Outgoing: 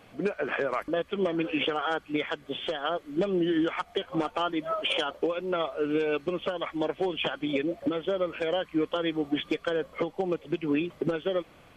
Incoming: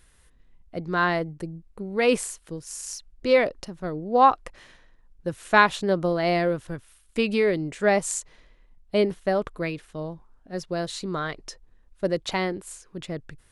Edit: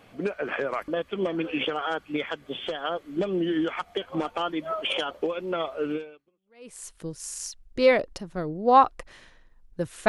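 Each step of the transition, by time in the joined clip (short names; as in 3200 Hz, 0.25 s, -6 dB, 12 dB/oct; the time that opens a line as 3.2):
outgoing
6.4 switch to incoming from 1.87 s, crossfade 0.96 s exponential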